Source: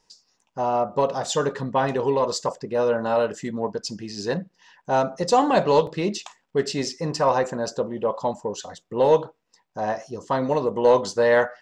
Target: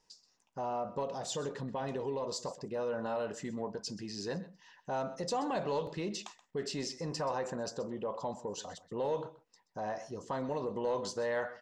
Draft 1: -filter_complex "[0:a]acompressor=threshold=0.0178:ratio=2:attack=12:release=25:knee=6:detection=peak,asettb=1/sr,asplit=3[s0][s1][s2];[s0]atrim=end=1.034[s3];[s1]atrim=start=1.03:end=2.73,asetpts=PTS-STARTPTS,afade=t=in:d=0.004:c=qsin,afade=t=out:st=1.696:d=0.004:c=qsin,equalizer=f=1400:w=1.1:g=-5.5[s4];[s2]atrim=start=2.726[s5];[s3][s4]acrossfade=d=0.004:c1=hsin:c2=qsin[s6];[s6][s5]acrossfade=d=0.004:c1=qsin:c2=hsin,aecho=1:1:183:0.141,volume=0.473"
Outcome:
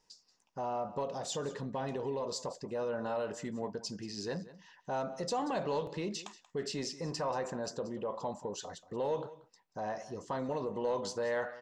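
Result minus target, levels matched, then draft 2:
echo 55 ms late
-filter_complex "[0:a]acompressor=threshold=0.0178:ratio=2:attack=12:release=25:knee=6:detection=peak,asettb=1/sr,asplit=3[s0][s1][s2];[s0]atrim=end=1.034[s3];[s1]atrim=start=1.03:end=2.73,asetpts=PTS-STARTPTS,afade=t=in:d=0.004:c=qsin,afade=t=out:st=1.696:d=0.004:c=qsin,equalizer=f=1400:w=1.1:g=-5.5[s4];[s2]atrim=start=2.726[s5];[s3][s4]acrossfade=d=0.004:c1=hsin:c2=qsin[s6];[s6][s5]acrossfade=d=0.004:c1=qsin:c2=hsin,aecho=1:1:128:0.141,volume=0.473"

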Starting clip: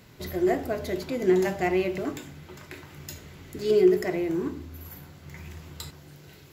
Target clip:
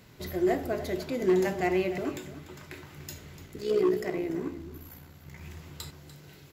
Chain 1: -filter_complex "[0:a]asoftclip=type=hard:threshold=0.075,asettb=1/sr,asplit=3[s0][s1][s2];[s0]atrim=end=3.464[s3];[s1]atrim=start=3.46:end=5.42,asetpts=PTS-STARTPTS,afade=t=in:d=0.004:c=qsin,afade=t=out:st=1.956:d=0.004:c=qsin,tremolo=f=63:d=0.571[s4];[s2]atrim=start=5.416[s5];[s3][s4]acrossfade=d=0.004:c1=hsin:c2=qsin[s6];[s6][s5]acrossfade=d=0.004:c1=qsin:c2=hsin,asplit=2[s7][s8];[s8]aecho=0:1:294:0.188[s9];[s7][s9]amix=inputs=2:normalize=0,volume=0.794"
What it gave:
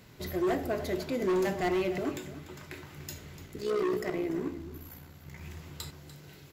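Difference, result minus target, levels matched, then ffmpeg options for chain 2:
hard clipper: distortion +10 dB
-filter_complex "[0:a]asoftclip=type=hard:threshold=0.168,asettb=1/sr,asplit=3[s0][s1][s2];[s0]atrim=end=3.464[s3];[s1]atrim=start=3.46:end=5.42,asetpts=PTS-STARTPTS,afade=t=in:d=0.004:c=qsin,afade=t=out:st=1.956:d=0.004:c=qsin,tremolo=f=63:d=0.571[s4];[s2]atrim=start=5.416[s5];[s3][s4]acrossfade=d=0.004:c1=hsin:c2=qsin[s6];[s6][s5]acrossfade=d=0.004:c1=qsin:c2=hsin,asplit=2[s7][s8];[s8]aecho=0:1:294:0.188[s9];[s7][s9]amix=inputs=2:normalize=0,volume=0.794"

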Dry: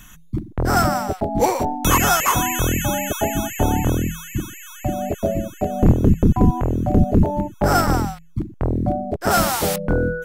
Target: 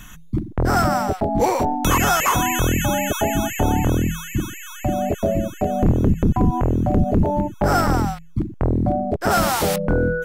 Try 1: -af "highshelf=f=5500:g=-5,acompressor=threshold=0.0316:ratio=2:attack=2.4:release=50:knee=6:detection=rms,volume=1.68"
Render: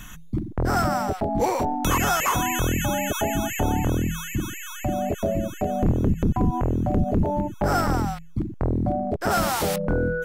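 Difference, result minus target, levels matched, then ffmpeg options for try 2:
compression: peak gain reduction +4.5 dB
-af "highshelf=f=5500:g=-5,acompressor=threshold=0.0841:ratio=2:attack=2.4:release=50:knee=6:detection=rms,volume=1.68"

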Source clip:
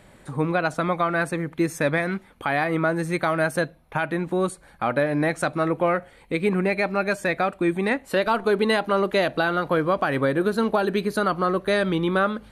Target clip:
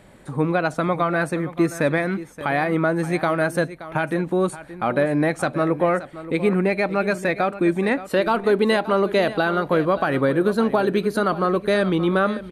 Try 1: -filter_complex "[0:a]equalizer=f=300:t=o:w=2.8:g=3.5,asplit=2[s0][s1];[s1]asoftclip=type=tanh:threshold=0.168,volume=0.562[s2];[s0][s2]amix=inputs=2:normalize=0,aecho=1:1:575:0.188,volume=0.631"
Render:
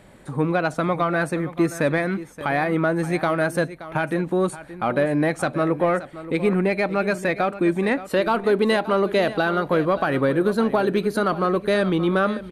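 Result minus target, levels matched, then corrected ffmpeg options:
saturation: distortion +13 dB
-filter_complex "[0:a]equalizer=f=300:t=o:w=2.8:g=3.5,asplit=2[s0][s1];[s1]asoftclip=type=tanh:threshold=0.447,volume=0.562[s2];[s0][s2]amix=inputs=2:normalize=0,aecho=1:1:575:0.188,volume=0.631"

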